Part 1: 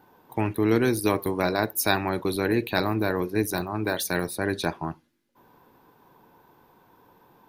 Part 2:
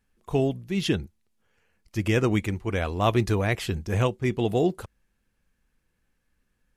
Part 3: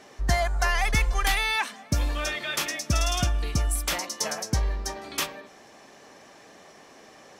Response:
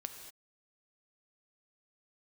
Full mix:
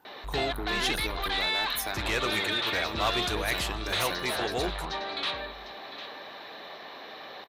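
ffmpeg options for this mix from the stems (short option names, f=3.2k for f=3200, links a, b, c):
-filter_complex "[0:a]acompressor=threshold=-26dB:ratio=4,volume=-2.5dB[a];[1:a]lowshelf=f=400:g=-11.5,volume=2.5dB[b];[2:a]aemphasis=mode=reproduction:type=bsi,asplit=2[c][d];[d]highpass=f=720:p=1,volume=32dB,asoftclip=type=tanh:threshold=-8dB[e];[c][e]amix=inputs=2:normalize=0,lowpass=f=1.3k:p=1,volume=-6dB,lowpass=f=3.9k:t=q:w=11,adelay=50,volume=-13dB,asplit=2[f][g];[g]volume=-13dB,aecho=0:1:752:1[h];[a][b][f][h]amix=inputs=4:normalize=0,lowshelf=f=390:g=-10.5,asoftclip=type=tanh:threshold=-18.5dB"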